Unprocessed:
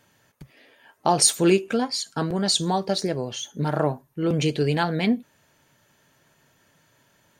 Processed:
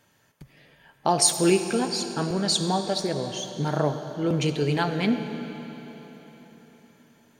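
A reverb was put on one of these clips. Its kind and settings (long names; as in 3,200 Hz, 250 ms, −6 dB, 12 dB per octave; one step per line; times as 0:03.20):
comb and all-pass reverb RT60 4.2 s, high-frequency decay 0.9×, pre-delay 20 ms, DRR 7.5 dB
level −2 dB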